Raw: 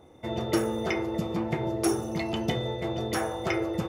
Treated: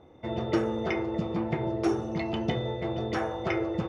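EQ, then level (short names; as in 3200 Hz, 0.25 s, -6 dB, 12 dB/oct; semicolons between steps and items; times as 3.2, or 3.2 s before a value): air absorption 160 m; 0.0 dB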